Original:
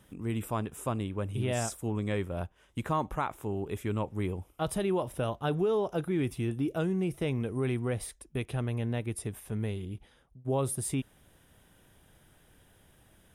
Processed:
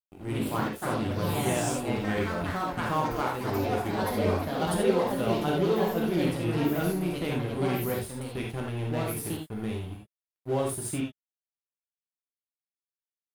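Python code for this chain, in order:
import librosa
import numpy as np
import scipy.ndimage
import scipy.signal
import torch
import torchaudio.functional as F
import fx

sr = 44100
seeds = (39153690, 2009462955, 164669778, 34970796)

y = fx.echo_pitch(x, sr, ms=103, semitones=3, count=3, db_per_echo=-3.0)
y = np.sign(y) * np.maximum(np.abs(y) - 10.0 ** (-42.0 / 20.0), 0.0)
y = fx.rev_gated(y, sr, seeds[0], gate_ms=110, shape='flat', drr_db=-1.5)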